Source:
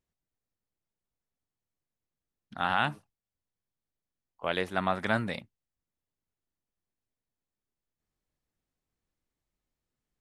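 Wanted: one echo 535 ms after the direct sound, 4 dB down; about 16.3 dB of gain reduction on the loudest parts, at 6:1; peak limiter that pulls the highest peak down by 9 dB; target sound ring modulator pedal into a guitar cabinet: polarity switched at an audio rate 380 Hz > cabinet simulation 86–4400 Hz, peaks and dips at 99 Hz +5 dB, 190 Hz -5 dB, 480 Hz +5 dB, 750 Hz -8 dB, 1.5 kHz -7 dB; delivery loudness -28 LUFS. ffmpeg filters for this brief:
-af "acompressor=threshold=0.01:ratio=6,alimiter=level_in=2.66:limit=0.0631:level=0:latency=1,volume=0.376,aecho=1:1:535:0.631,aeval=exprs='val(0)*sgn(sin(2*PI*380*n/s))':c=same,highpass=86,equalizer=f=99:t=q:w=4:g=5,equalizer=f=190:t=q:w=4:g=-5,equalizer=f=480:t=q:w=4:g=5,equalizer=f=750:t=q:w=4:g=-8,equalizer=f=1500:t=q:w=4:g=-7,lowpass=f=4400:w=0.5412,lowpass=f=4400:w=1.3066,volume=13.3"

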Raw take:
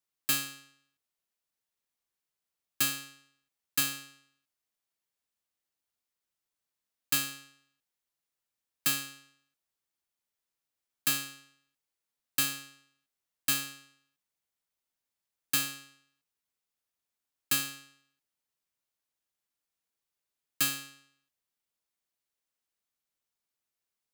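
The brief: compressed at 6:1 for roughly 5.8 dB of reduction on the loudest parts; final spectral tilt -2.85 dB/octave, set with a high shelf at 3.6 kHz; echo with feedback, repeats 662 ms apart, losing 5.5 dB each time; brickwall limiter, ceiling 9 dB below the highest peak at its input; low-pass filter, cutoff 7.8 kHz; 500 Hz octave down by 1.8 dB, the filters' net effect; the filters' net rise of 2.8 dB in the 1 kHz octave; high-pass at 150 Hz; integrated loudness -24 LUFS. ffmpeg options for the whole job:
-af "highpass=150,lowpass=7800,equalizer=f=500:t=o:g=-3.5,equalizer=f=1000:t=o:g=5.5,highshelf=f=3600:g=-7.5,acompressor=threshold=0.0178:ratio=6,alimiter=level_in=2.82:limit=0.0631:level=0:latency=1,volume=0.355,aecho=1:1:662|1324|1986|2648|3310|3972|4634:0.531|0.281|0.149|0.079|0.0419|0.0222|0.0118,volume=15.8"

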